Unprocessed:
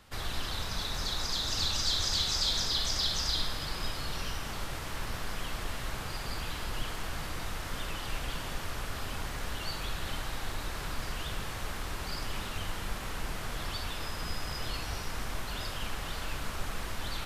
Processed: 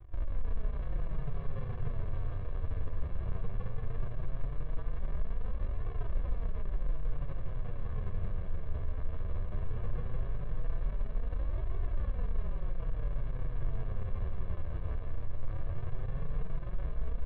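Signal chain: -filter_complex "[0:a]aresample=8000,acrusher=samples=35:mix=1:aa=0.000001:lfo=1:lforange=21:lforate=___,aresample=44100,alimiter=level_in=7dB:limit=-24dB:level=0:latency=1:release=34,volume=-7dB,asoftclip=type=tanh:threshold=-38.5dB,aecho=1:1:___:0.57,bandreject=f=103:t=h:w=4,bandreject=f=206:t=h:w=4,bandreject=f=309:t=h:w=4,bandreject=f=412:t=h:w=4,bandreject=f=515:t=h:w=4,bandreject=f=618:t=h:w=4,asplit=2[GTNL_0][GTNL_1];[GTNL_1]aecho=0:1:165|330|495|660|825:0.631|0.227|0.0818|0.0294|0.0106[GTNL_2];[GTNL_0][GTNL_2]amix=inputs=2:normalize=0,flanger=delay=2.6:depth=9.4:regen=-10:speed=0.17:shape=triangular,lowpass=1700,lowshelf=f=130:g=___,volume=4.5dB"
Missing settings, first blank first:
0.48, 1.8, 5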